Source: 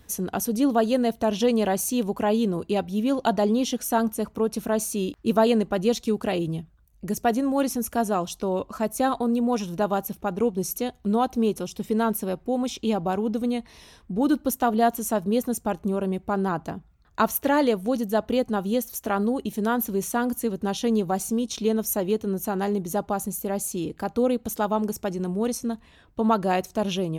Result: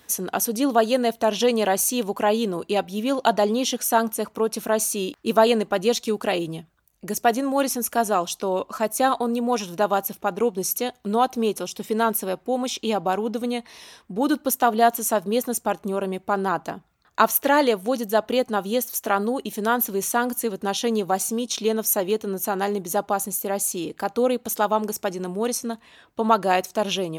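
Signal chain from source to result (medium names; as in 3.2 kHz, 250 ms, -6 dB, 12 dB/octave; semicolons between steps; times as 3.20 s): high-pass 560 Hz 6 dB/octave; trim +6 dB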